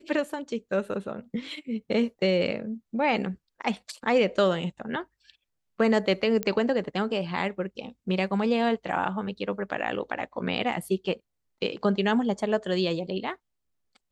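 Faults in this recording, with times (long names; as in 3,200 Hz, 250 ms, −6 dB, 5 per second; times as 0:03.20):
0:06.43: click −13 dBFS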